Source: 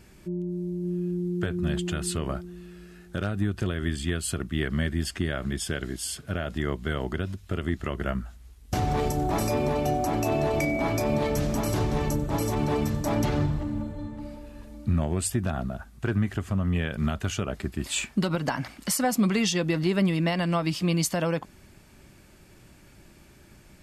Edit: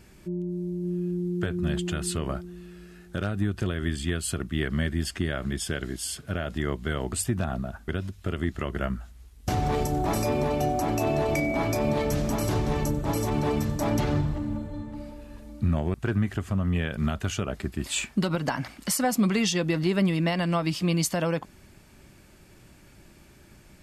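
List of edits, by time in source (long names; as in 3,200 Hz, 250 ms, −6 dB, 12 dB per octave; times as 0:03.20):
0:15.19–0:15.94: move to 0:07.13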